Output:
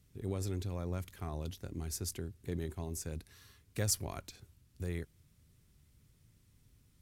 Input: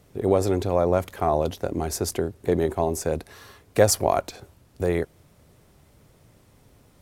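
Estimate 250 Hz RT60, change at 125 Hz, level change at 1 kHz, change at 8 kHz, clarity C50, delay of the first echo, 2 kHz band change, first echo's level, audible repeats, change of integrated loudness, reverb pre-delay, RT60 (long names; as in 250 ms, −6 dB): no reverb audible, −8.5 dB, −23.5 dB, −9.5 dB, no reverb audible, no echo audible, −15.0 dB, no echo audible, no echo audible, −15.0 dB, no reverb audible, no reverb audible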